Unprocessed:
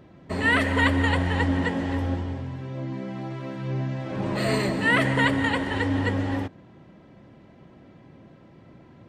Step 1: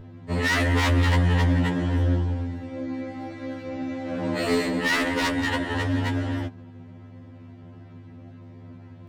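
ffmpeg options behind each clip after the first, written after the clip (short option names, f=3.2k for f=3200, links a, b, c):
-af "aeval=exprs='val(0)+0.0141*(sin(2*PI*50*n/s)+sin(2*PI*2*50*n/s)/2+sin(2*PI*3*50*n/s)/3+sin(2*PI*4*50*n/s)/4+sin(2*PI*5*50*n/s)/5)':c=same,aeval=exprs='0.133*(abs(mod(val(0)/0.133+3,4)-2)-1)':c=same,afftfilt=real='re*2*eq(mod(b,4),0)':imag='im*2*eq(mod(b,4),0)':win_size=2048:overlap=0.75,volume=2.5dB"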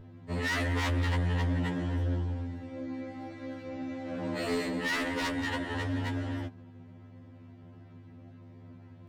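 -af "asoftclip=type=tanh:threshold=-16dB,volume=-6.5dB"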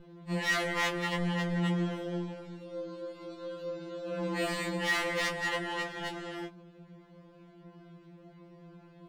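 -af "afftfilt=real='re*2.83*eq(mod(b,8),0)':imag='im*2.83*eq(mod(b,8),0)':win_size=2048:overlap=0.75"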